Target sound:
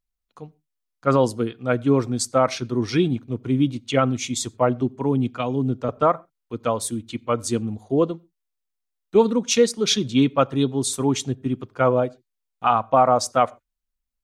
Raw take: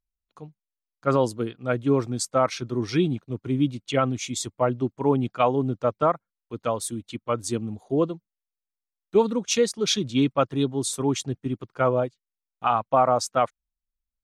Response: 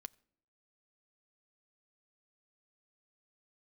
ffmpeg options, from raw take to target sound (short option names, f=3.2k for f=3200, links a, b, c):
-filter_complex "[0:a]asettb=1/sr,asplit=3[a][b][c];[a]atrim=end=4.814[d];[b]atrim=start=4.81:end=5.89,asetpts=PTS-STARTPTS,afade=t=in:d=0.004:c=qsin,afade=t=out:st=1.076:d=0.004:c=qsin,acrossover=split=350|3000[e][f][g];[f]acompressor=threshold=-31dB:ratio=6[h];[e][h][g]amix=inputs=3:normalize=0[i];[c]atrim=start=5.886[j];[d][i]acrossfade=d=0.004:c1=hsin:c2=qsin[k];[k][j]acrossfade=d=0.004:c1=qsin:c2=hsin[l];[1:a]atrim=start_sample=2205,atrim=end_sample=6174[m];[l][m]afir=irnorm=-1:irlink=0,volume=9dB"